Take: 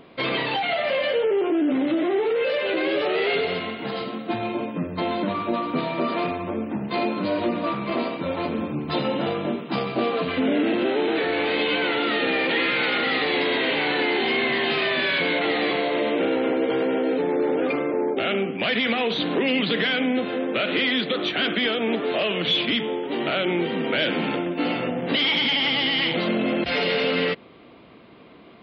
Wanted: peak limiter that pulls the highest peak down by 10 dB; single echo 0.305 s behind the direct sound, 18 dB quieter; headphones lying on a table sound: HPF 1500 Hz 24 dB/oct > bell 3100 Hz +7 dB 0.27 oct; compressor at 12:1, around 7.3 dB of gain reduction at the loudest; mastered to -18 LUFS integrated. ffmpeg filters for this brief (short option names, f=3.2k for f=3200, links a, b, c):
-af "acompressor=threshold=-26dB:ratio=12,alimiter=level_in=2.5dB:limit=-24dB:level=0:latency=1,volume=-2.5dB,highpass=f=1.5k:w=0.5412,highpass=f=1.5k:w=1.3066,equalizer=f=3.1k:t=o:w=0.27:g=7,aecho=1:1:305:0.126,volume=17dB"